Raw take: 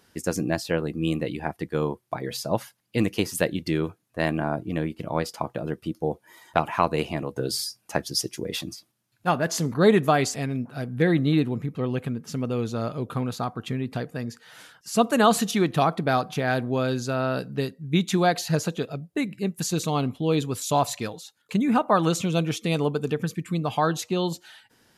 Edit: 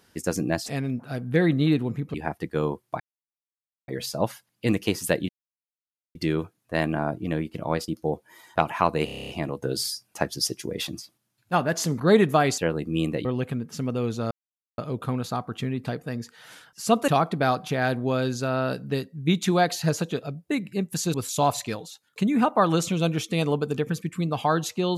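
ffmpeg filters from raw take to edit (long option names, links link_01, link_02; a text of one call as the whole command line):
ffmpeg -i in.wav -filter_complex "[0:a]asplit=19[link_01][link_02][link_03][link_04][link_05][link_06][link_07][link_08][link_09][link_10][link_11][link_12][link_13][link_14][link_15][link_16][link_17][link_18][link_19];[link_01]atrim=end=0.662[link_20];[link_02]atrim=start=10.318:end=11.802[link_21];[link_03]atrim=start=1.328:end=2.19,asetpts=PTS-STARTPTS,afade=type=out:start_time=0.858:duration=0.004:curve=hsin,apad=pad_dur=0.88[link_22];[link_04]atrim=start=2.19:end=3.6,asetpts=PTS-STARTPTS,afade=type=in:duration=0.004:curve=hsin,afade=type=out:start_time=1.406:duration=0.004:curve=hsin,apad=pad_dur=0.86[link_23];[link_05]atrim=start=3.6:end=5.332,asetpts=PTS-STARTPTS,afade=type=in:duration=0.004:curve=hsin[link_24];[link_06]atrim=start=5.858:end=7.062[link_25];[link_07]atrim=start=7.028:end=7.062[link_26];[link_08]atrim=start=7.028:end=7.062[link_27];[link_09]atrim=start=7.028:end=7.062[link_28];[link_10]atrim=start=7.028:end=7.062[link_29];[link_11]atrim=start=7.028:end=7.062[link_30];[link_12]atrim=start=7.028:end=7.062[link_31];[link_13]atrim=start=7.028:end=7.062[link_32];[link_14]atrim=start=7.028:end=10.322[link_33];[link_15]atrim=start=0.658:end=1.332[link_34];[link_16]atrim=start=11.798:end=12.86,asetpts=PTS-STARTPTS,afade=type=out:start_time=1.058:duration=0.004:curve=hsin,apad=pad_dur=0.47[link_35];[link_17]atrim=start=12.86:end=15.162,asetpts=PTS-STARTPTS,afade=type=in:duration=0.004:curve=hsin[link_36];[link_18]atrim=start=15.738:end=19.802[link_37];[link_19]atrim=start=20.468[link_38];[link_20][link_21]acrossfade=duration=0.004:curve1=hsin:curve2=hsin[link_39];[link_22][link_23][link_24]concat=n=3:v=0:a=1[link_40];[link_39][link_40]acrossfade=duration=0.004:curve1=hsin:curve2=hsin[link_41];[link_41][link_25]acrossfade=duration=0.004:curve1=hsin:curve2=hsin[link_42];[link_42][link_26]acrossfade=duration=0.004:curve1=hsin:curve2=hsin[link_43];[link_43][link_27]acrossfade=duration=0.004:curve1=hsin:curve2=hsin[link_44];[link_44][link_28]acrossfade=duration=0.004:curve1=hsin:curve2=hsin[link_45];[link_45][link_29]acrossfade=duration=0.004:curve1=hsin:curve2=hsin[link_46];[link_46][link_30]acrossfade=duration=0.004:curve1=hsin:curve2=hsin[link_47];[link_47][link_31]acrossfade=duration=0.004:curve1=hsin:curve2=hsin[link_48];[link_48][link_32]acrossfade=duration=0.004:curve1=hsin:curve2=hsin[link_49];[link_49][link_33]acrossfade=duration=0.004:curve1=hsin:curve2=hsin[link_50];[link_50][link_34]acrossfade=duration=0.004:curve1=hsin:curve2=hsin[link_51];[link_35][link_36]concat=n=2:v=0:a=1[link_52];[link_51][link_52]acrossfade=duration=0.004:curve1=hsin:curve2=hsin[link_53];[link_53][link_37]acrossfade=duration=0.004:curve1=hsin:curve2=hsin[link_54];[link_54][link_38]acrossfade=duration=0.004:curve1=hsin:curve2=hsin" out.wav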